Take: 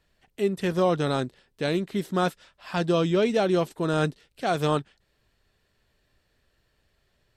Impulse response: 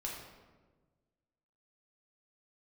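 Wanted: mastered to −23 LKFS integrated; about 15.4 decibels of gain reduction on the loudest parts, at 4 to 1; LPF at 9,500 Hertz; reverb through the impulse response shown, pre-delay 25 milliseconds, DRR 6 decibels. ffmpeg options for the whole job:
-filter_complex "[0:a]lowpass=9500,acompressor=threshold=-38dB:ratio=4,asplit=2[link_01][link_02];[1:a]atrim=start_sample=2205,adelay=25[link_03];[link_02][link_03]afir=irnorm=-1:irlink=0,volume=-6.5dB[link_04];[link_01][link_04]amix=inputs=2:normalize=0,volume=16dB"

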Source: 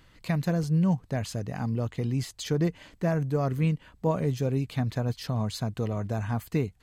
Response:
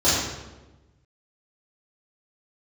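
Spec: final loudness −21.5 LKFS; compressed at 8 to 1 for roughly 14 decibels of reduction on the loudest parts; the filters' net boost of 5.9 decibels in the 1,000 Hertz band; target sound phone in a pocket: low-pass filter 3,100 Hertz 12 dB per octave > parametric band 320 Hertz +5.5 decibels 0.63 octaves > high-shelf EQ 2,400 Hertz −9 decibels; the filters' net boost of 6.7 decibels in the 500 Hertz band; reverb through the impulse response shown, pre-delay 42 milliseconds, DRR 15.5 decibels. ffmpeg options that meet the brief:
-filter_complex "[0:a]equalizer=frequency=500:width_type=o:gain=5,equalizer=frequency=1000:width_type=o:gain=7,acompressor=threshold=-32dB:ratio=8,asplit=2[link_01][link_02];[1:a]atrim=start_sample=2205,adelay=42[link_03];[link_02][link_03]afir=irnorm=-1:irlink=0,volume=-34dB[link_04];[link_01][link_04]amix=inputs=2:normalize=0,lowpass=3100,equalizer=frequency=320:width_type=o:width=0.63:gain=5.5,highshelf=frequency=2400:gain=-9,volume=14.5dB"

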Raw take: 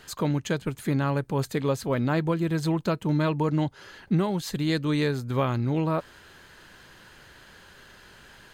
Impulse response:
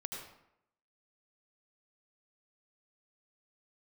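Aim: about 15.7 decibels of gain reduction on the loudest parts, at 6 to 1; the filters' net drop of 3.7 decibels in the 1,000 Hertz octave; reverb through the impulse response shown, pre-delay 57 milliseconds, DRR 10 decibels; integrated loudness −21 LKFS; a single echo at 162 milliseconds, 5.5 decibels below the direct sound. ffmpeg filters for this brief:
-filter_complex "[0:a]equalizer=frequency=1000:width_type=o:gain=-4.5,acompressor=threshold=-38dB:ratio=6,aecho=1:1:162:0.531,asplit=2[link_01][link_02];[1:a]atrim=start_sample=2205,adelay=57[link_03];[link_02][link_03]afir=irnorm=-1:irlink=0,volume=-9.5dB[link_04];[link_01][link_04]amix=inputs=2:normalize=0,volume=20dB"

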